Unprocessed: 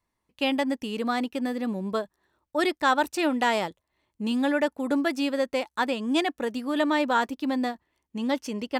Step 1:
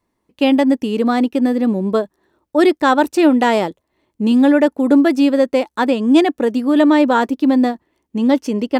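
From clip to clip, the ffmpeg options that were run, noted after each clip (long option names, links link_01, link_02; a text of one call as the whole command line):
ffmpeg -i in.wav -af "equalizer=frequency=320:width_type=o:width=2.2:gain=10,volume=4.5dB" out.wav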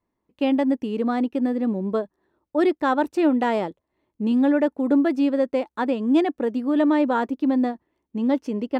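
ffmpeg -i in.wav -af "highshelf=frequency=3600:gain=-11.5,volume=-7dB" out.wav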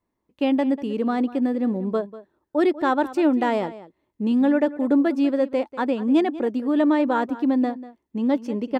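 ffmpeg -i in.wav -filter_complex "[0:a]asplit=2[link_01][link_02];[link_02]adelay=192.4,volume=-16dB,highshelf=frequency=4000:gain=-4.33[link_03];[link_01][link_03]amix=inputs=2:normalize=0" out.wav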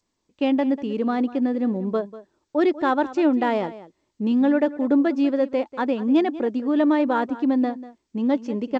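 ffmpeg -i in.wav -ar 16000 -c:a g722 out.g722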